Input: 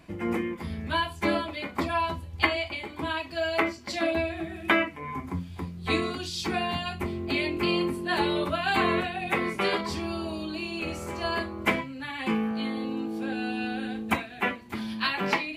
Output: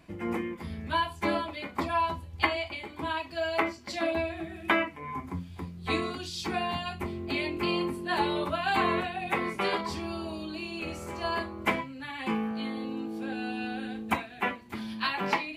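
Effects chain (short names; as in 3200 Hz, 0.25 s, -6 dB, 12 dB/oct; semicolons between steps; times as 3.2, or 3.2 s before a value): dynamic EQ 910 Hz, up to +5 dB, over -40 dBFS, Q 2.2; gain -3.5 dB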